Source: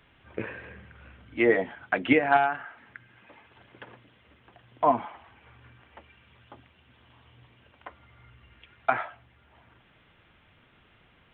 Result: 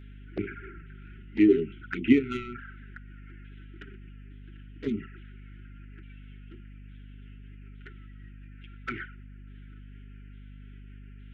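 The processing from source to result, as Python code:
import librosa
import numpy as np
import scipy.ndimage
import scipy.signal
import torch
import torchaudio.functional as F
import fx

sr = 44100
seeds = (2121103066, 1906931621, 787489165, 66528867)

p1 = fx.pitch_ramps(x, sr, semitones=-3.0, every_ms=861)
p2 = fx.peak_eq(p1, sr, hz=460.0, db=8.5, octaves=1.2)
p3 = 10.0 ** (-19.0 / 20.0) * np.tanh(p2 / 10.0 ** (-19.0 / 20.0))
p4 = p2 + (p3 * librosa.db_to_amplitude(-9.0))
p5 = fx.brickwall_bandstop(p4, sr, low_hz=410.0, high_hz=1300.0)
p6 = fx.env_flanger(p5, sr, rest_ms=8.1, full_db=-26.5)
y = fx.add_hum(p6, sr, base_hz=50, snr_db=13)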